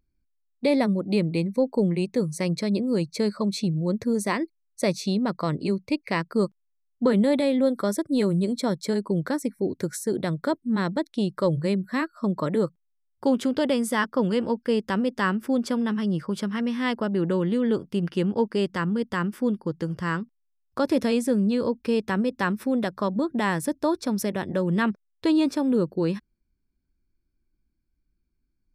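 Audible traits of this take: noise floor -74 dBFS; spectral tilt -6.0 dB/octave

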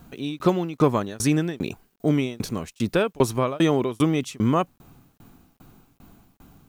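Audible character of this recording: tremolo saw down 2.5 Hz, depth 100%; a quantiser's noise floor 12-bit, dither none

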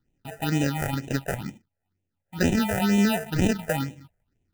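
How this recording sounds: aliases and images of a low sample rate 1.1 kHz, jitter 0%; phasing stages 6, 2.1 Hz, lowest notch 270–1300 Hz

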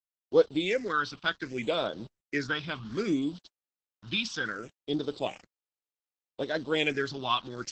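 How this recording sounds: a quantiser's noise floor 8-bit, dither none; phasing stages 6, 0.65 Hz, lowest notch 500–2100 Hz; Opus

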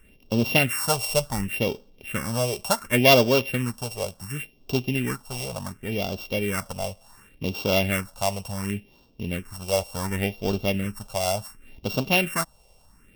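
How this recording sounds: a buzz of ramps at a fixed pitch in blocks of 16 samples; phasing stages 4, 0.69 Hz, lowest notch 270–1900 Hz

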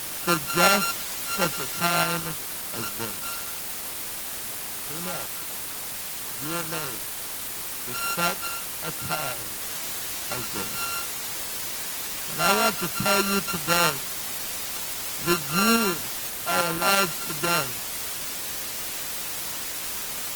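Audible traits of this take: a buzz of ramps at a fixed pitch in blocks of 32 samples; tremolo saw up 5.9 Hz, depth 40%; a quantiser's noise floor 6-bit, dither triangular; Opus

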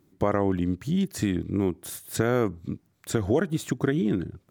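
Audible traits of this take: noise floor -68 dBFS; spectral tilt -6.0 dB/octave

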